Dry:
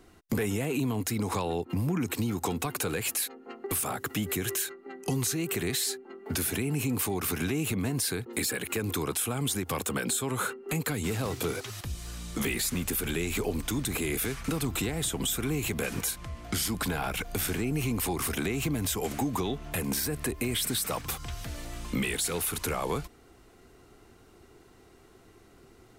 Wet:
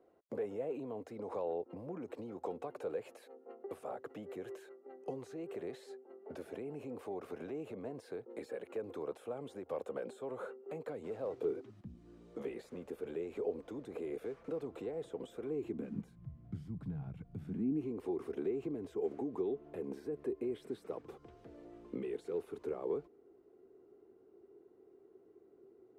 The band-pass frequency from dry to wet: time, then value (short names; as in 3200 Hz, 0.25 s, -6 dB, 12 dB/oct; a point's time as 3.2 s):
band-pass, Q 3.8
11.33 s 540 Hz
11.84 s 200 Hz
12.37 s 490 Hz
15.46 s 490 Hz
16.2 s 140 Hz
17.33 s 140 Hz
17.94 s 400 Hz